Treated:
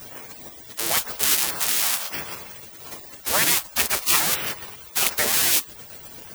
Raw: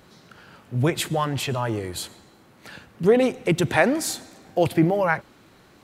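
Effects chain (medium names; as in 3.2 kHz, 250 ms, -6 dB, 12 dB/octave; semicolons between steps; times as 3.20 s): zero-crossing glitches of -11 dBFS; tape speed -8%; spectral gate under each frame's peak -20 dB weak; trim +7.5 dB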